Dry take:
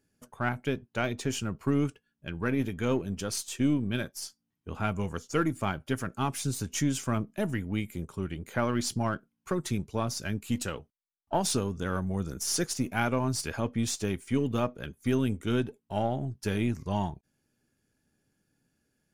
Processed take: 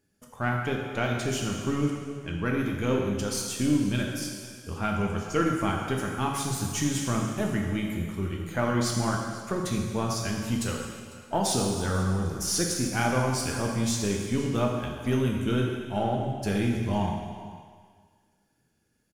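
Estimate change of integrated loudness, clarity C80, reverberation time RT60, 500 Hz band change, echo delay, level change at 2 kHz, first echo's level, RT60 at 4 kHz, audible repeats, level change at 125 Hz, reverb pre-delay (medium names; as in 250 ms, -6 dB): +3.0 dB, 3.5 dB, 1.8 s, +3.0 dB, 499 ms, +3.0 dB, -20.0 dB, 1.9 s, 1, +3.5 dB, 7 ms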